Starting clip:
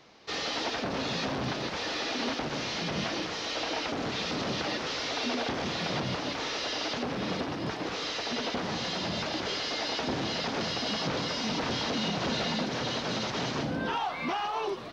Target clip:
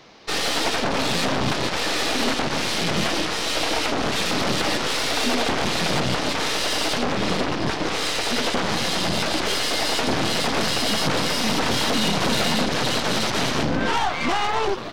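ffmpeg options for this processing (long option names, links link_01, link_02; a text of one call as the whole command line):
ffmpeg -i in.wav -af "aeval=exprs='0.119*(cos(1*acos(clip(val(0)/0.119,-1,1)))-cos(1*PI/2))+0.0188*(cos(8*acos(clip(val(0)/0.119,-1,1)))-cos(8*PI/2))':channel_layout=same,volume=8dB" out.wav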